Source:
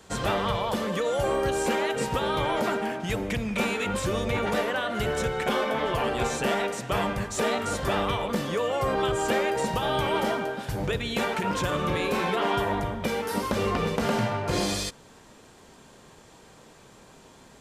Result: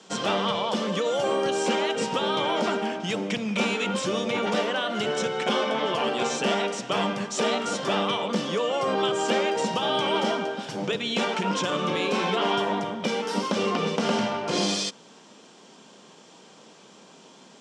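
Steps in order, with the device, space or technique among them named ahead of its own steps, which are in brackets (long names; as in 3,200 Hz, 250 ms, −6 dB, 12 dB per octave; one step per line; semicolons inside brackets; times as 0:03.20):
television speaker (loudspeaker in its box 180–8,100 Hz, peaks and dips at 190 Hz +4 dB, 1,800 Hz −4 dB, 3,100 Hz +6 dB, 5,500 Hz +6 dB)
level +1 dB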